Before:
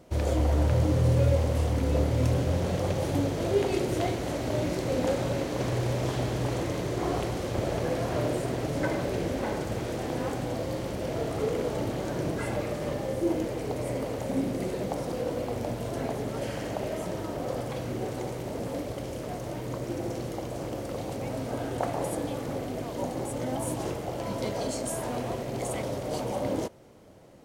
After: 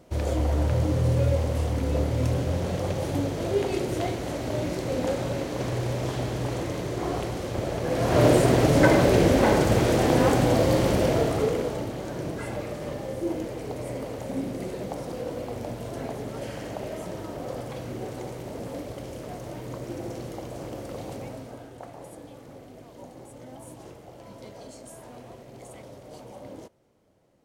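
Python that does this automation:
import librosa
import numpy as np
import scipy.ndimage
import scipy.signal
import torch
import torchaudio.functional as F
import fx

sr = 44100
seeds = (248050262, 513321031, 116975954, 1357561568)

y = fx.gain(x, sr, db=fx.line((7.82, 0.0), (8.26, 11.0), (10.97, 11.0), (11.9, -2.0), (21.16, -2.0), (21.72, -12.5)))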